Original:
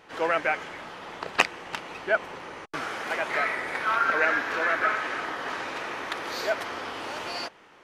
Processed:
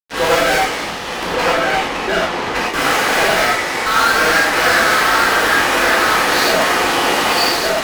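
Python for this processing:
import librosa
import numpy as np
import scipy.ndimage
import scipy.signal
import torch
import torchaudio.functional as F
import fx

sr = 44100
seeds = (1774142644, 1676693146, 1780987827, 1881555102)

p1 = fx.level_steps(x, sr, step_db=13, at=(3.33, 4.56))
p2 = p1 + fx.echo_single(p1, sr, ms=1163, db=-5.0, dry=0)
p3 = fx.fuzz(p2, sr, gain_db=36.0, gate_db=-40.0)
p4 = fx.lowpass(p3, sr, hz=3500.0, slope=6, at=(1.23, 2.63))
p5 = fx.rev_gated(p4, sr, seeds[0], gate_ms=140, shape='flat', drr_db=-5.5)
y = F.gain(torch.from_numpy(p5), -4.5).numpy()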